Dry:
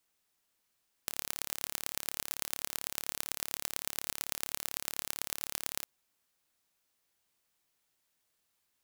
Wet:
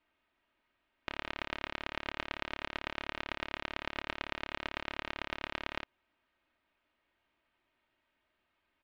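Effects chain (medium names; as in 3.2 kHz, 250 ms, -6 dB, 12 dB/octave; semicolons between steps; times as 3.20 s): low-pass 2.9 kHz 24 dB/octave; comb 3.2 ms, depth 52%; trim +6 dB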